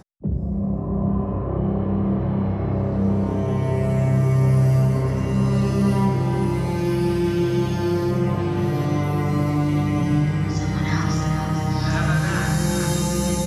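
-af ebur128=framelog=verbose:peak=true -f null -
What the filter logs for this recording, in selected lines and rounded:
Integrated loudness:
  I:         -21.4 LUFS
  Threshold: -31.4 LUFS
Loudness range:
  LRA:         2.7 LU
  Threshold: -41.2 LUFS
  LRA low:   -22.4 LUFS
  LRA high:  -19.7 LUFS
True peak:
  Peak:       -8.6 dBFS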